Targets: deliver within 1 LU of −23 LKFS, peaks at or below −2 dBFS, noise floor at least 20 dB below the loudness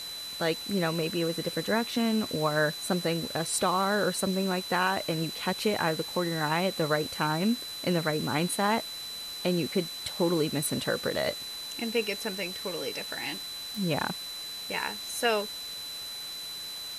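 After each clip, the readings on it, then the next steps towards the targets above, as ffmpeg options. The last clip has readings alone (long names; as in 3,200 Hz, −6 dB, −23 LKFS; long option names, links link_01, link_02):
interfering tone 4,000 Hz; level of the tone −37 dBFS; background noise floor −39 dBFS; target noise floor −50 dBFS; integrated loudness −29.5 LKFS; sample peak −14.0 dBFS; target loudness −23.0 LKFS
→ -af "bandreject=frequency=4000:width=30"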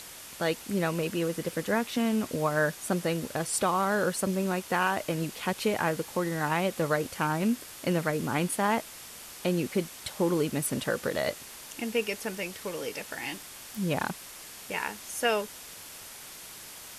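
interfering tone none found; background noise floor −46 dBFS; target noise floor −50 dBFS
→ -af "afftdn=noise_reduction=6:noise_floor=-46"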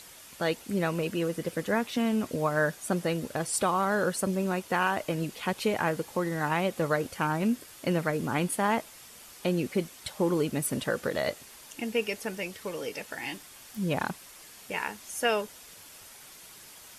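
background noise floor −50 dBFS; integrated loudness −30.0 LKFS; sample peak −14.5 dBFS; target loudness −23.0 LKFS
→ -af "volume=7dB"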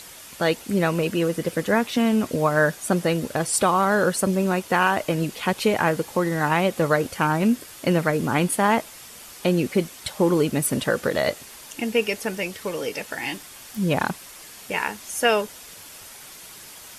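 integrated loudness −23.0 LKFS; sample peak −7.5 dBFS; background noise floor −43 dBFS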